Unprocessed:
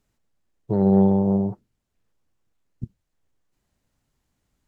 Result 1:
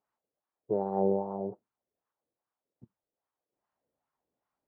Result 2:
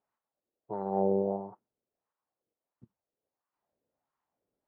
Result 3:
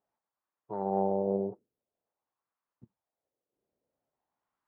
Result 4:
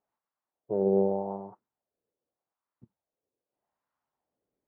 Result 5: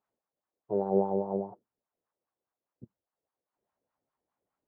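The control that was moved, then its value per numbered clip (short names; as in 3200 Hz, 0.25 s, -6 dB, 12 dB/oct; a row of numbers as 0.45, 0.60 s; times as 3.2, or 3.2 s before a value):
wah, rate: 2.5, 1.5, 0.48, 0.83, 4.9 Hz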